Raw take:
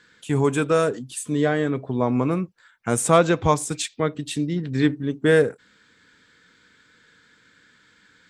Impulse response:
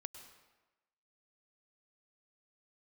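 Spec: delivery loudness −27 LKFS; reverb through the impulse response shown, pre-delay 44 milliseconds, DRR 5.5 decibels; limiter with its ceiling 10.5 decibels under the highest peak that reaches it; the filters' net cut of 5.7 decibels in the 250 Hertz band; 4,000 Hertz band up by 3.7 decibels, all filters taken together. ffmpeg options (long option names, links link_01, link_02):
-filter_complex "[0:a]equalizer=frequency=250:width_type=o:gain=-8,equalizer=frequency=4000:width_type=o:gain=4.5,alimiter=limit=-14dB:level=0:latency=1,asplit=2[link_01][link_02];[1:a]atrim=start_sample=2205,adelay=44[link_03];[link_02][link_03]afir=irnorm=-1:irlink=0,volume=-1.5dB[link_04];[link_01][link_04]amix=inputs=2:normalize=0,volume=-1dB"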